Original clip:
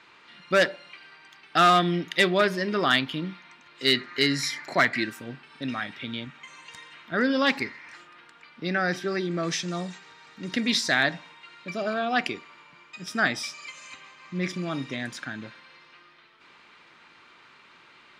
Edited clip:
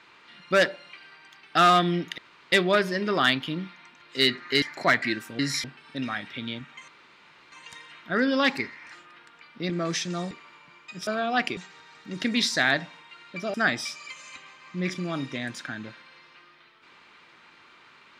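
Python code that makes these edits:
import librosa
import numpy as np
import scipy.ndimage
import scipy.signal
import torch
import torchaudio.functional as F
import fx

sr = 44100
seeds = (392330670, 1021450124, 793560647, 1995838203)

y = fx.edit(x, sr, fx.insert_room_tone(at_s=2.18, length_s=0.34),
    fx.move(start_s=4.28, length_s=0.25, to_s=5.3),
    fx.insert_room_tone(at_s=6.54, length_s=0.64),
    fx.cut(start_s=8.72, length_s=0.56),
    fx.swap(start_s=9.89, length_s=1.97, other_s=12.36, other_length_s=0.76), tone=tone)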